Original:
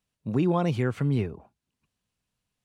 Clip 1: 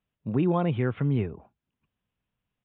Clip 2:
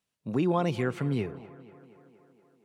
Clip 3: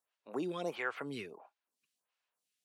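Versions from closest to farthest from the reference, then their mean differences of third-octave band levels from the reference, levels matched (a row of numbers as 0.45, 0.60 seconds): 1, 2, 3; 2.5, 3.5, 8.5 decibels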